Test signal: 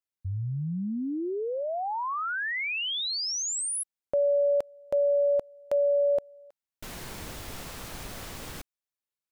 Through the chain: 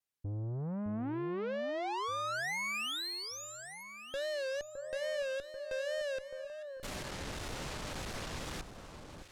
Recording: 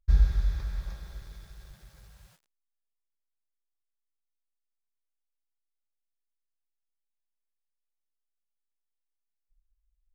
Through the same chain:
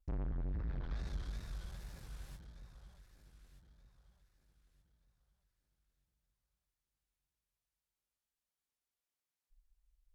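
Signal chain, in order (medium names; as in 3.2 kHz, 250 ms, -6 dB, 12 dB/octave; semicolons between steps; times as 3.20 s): low-pass that closes with the level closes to 1.2 kHz, closed at -25.5 dBFS; valve stage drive 39 dB, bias 0.4; wow and flutter 2.1 Hz 130 cents; on a send: echo whose repeats swap between lows and highs 613 ms, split 1.4 kHz, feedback 55%, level -7.5 dB; on the sum: trim +3 dB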